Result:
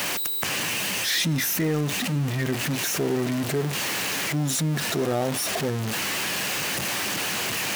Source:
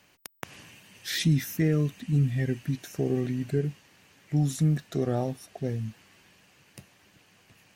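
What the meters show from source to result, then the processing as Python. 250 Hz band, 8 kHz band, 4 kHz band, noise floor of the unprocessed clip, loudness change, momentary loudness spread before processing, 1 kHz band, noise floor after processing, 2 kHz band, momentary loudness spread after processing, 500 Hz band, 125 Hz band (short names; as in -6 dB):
+1.5 dB, +16.0 dB, +13.5 dB, -62 dBFS, +3.5 dB, 15 LU, +12.5 dB, -28 dBFS, +14.5 dB, 3 LU, +4.5 dB, -1.0 dB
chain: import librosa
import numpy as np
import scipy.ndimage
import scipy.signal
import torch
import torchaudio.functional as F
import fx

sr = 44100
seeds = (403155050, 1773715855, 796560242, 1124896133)

p1 = x + 0.5 * 10.0 ** (-28.5 / 20.0) * np.sign(x)
p2 = fx.highpass(p1, sr, hz=290.0, slope=6)
p3 = np.clip(p2, -10.0 ** (-25.0 / 20.0), 10.0 ** (-25.0 / 20.0))
p4 = p2 + F.gain(torch.from_numpy(p3), -11.0).numpy()
y = fx.env_flatten(p4, sr, amount_pct=50)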